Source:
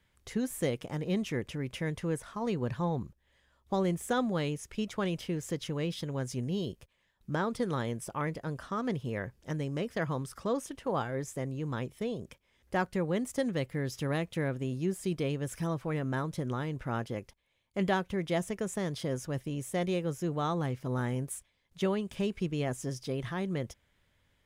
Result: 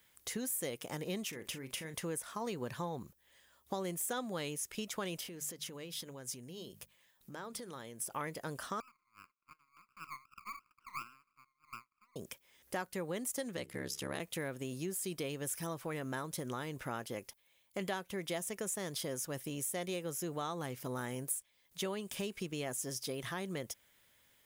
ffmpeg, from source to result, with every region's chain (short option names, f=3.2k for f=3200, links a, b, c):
-filter_complex "[0:a]asettb=1/sr,asplit=3[a][b][c];[a]atrim=end=1.294[d];[b]atrim=start=1.29:end=1.94,asetpts=PTS-STARTPTS,afade=t=in:d=0.004:c=qsin,afade=t=out:st=0.646:d=0.004:c=qsin,acompressor=threshold=-37dB:ratio=12:attack=3.2:release=140:knee=1:detection=peak,asplit=2[e][f];[f]adelay=37,volume=-11dB[g];[e][g]amix=inputs=2:normalize=0,atrim=end_sample=28665[h];[c]atrim=start=1.936[i];[d][h]acrossfade=d=0.004:c1=hsin:c2=qsin[j];[j][i]acrossfade=d=0.004:c1=qsin:c2=hsin,asettb=1/sr,asplit=3[k][l][m];[k]atrim=end=5.184[n];[l]atrim=start=5.18:end=8.11,asetpts=PTS-STARTPTS,afade=t=in:d=0.004:c=qsin,afade=t=out:st=2.926:d=0.004:c=qsin,bandreject=f=50:t=h:w=6,bandreject=f=100:t=h:w=6,bandreject=f=150:t=h:w=6,bandreject=f=200:t=h:w=6,acompressor=threshold=-43dB:ratio=5:attack=3.2:release=140:knee=1:detection=peak[o];[m]atrim=start=8.106[p];[n][o]acrossfade=d=0.004:c1=hsin:c2=qsin[q];[q][p]acrossfade=d=0.004:c1=qsin:c2=hsin,asettb=1/sr,asplit=3[r][s][t];[r]atrim=end=8.804[u];[s]atrim=start=8.8:end=12.16,asetpts=PTS-STARTPTS,afade=t=in:d=0.004:c=qsin,afade=t=out:st=3.356:d=0.004:c=qsin,asuperpass=centerf=1200:order=8:qfactor=3.3,aeval=exprs='max(val(0),0)':c=same[v];[t]atrim=start=12.156[w];[u][v]acrossfade=d=0.004:c1=hsin:c2=qsin[x];[x][w]acrossfade=d=0.004:c1=qsin:c2=hsin,asettb=1/sr,asplit=3[y][z][aa];[y]atrim=end=13.564[ab];[z]atrim=start=13.56:end=14.2,asetpts=PTS-STARTPTS,afade=t=in:d=0.004:c=qsin,afade=t=out:st=0.636:d=0.004:c=qsin,lowpass=11k,bandreject=f=60:t=h:w=6,bandreject=f=120:t=h:w=6,bandreject=f=180:t=h:w=6,bandreject=f=240:t=h:w=6,bandreject=f=300:t=h:w=6,bandreject=f=360:t=h:w=6,bandreject=f=420:t=h:w=6,aeval=exprs='val(0)*sin(2*PI*34*n/s)':c=same[ac];[aa]atrim=start=14.196[ad];[ab][ac]acrossfade=d=0.004:c1=hsin:c2=qsin[ae];[ae][ad]acrossfade=d=0.004:c1=qsin:c2=hsin,aemphasis=mode=production:type=bsi,acompressor=threshold=-39dB:ratio=3,volume=1.5dB"